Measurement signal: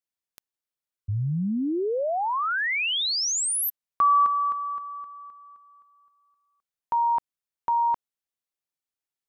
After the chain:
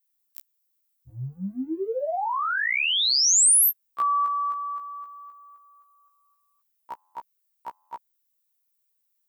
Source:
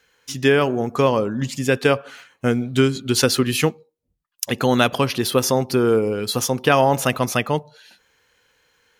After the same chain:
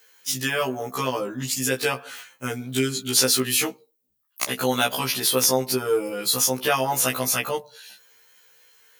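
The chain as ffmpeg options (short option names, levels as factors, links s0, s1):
-filter_complex "[0:a]asplit=2[s0][s1];[s1]acompressor=threshold=0.0631:ratio=12:attack=1.8:release=40:knee=1:detection=rms,volume=1.26[s2];[s0][s2]amix=inputs=2:normalize=0,aemphasis=mode=production:type=bsi,aeval=exprs='(mod(0.668*val(0)+1,2)-1)/0.668':c=same,acrossover=split=9800[s3][s4];[s4]acompressor=threshold=0.141:ratio=4:attack=1:release=60[s5];[s3][s5]amix=inputs=2:normalize=0,afftfilt=real='re*1.73*eq(mod(b,3),0)':imag='im*1.73*eq(mod(b,3),0)':win_size=2048:overlap=0.75,volume=0.562"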